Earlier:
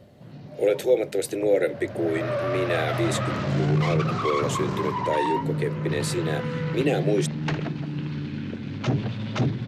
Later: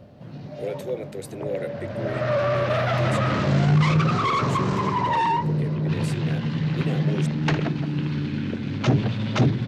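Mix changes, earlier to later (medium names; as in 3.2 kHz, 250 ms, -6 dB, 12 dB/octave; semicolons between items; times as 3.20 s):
speech -9.5 dB; first sound +4.5 dB; second sound: muted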